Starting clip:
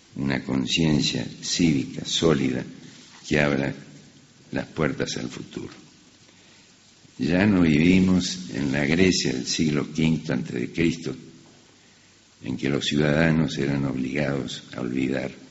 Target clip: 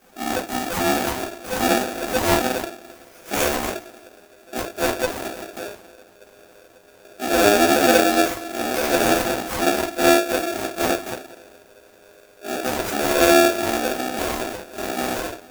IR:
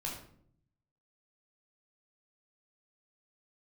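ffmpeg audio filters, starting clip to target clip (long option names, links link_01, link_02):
-filter_complex "[0:a]asettb=1/sr,asplit=3[link_01][link_02][link_03];[link_01]atrim=end=1.564[link_04];[link_02]atrim=start=1.56:end=2.58,asetpts=PTS-STARTPTS,afade=type=in:duration=0.004:curve=qsin,afade=type=out:start_time=1.016:duration=0.004:curve=qsin,aeval=exprs='val(0)+0.5*0.0316*sgn(val(0))':channel_layout=same[link_05];[link_03]atrim=start=2.576[link_06];[link_04][link_05]acrossfade=duration=0.004:curve1=hsin:curve2=qsin[link_07];[link_07][link_06]acrossfade=duration=0.004:curve1=qsin:curve2=hsin,asubboost=boost=7:cutoff=110,acrusher=samples=20:mix=1:aa=0.000001:lfo=1:lforange=20:lforate=0.21,aexciter=amount=2:drive=8.3:freq=5600[link_08];[1:a]atrim=start_sample=2205,afade=type=out:start_time=0.17:duration=0.01,atrim=end_sample=7938,asetrate=74970,aresample=44100[link_09];[link_08][link_09]afir=irnorm=-1:irlink=0,aeval=exprs='val(0)*sgn(sin(2*PI*510*n/s))':channel_layout=same"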